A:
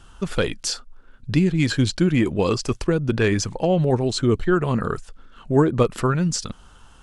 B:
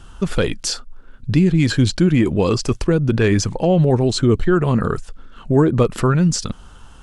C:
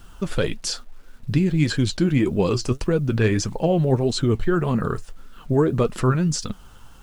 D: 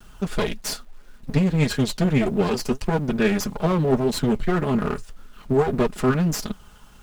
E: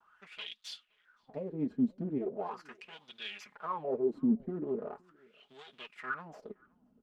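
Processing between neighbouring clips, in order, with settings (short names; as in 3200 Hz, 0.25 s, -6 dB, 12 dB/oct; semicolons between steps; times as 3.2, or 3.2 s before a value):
in parallel at +2 dB: limiter -16 dBFS, peak gain reduction 11 dB; on the sum: low shelf 440 Hz +4 dB; gain -3.5 dB
bit-crush 9-bit; flange 1.7 Hz, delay 3.9 ms, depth 5.7 ms, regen +62%
minimum comb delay 4.8 ms
wah 0.4 Hz 240–3500 Hz, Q 6.3; outdoor echo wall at 89 m, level -28 dB; gain -2.5 dB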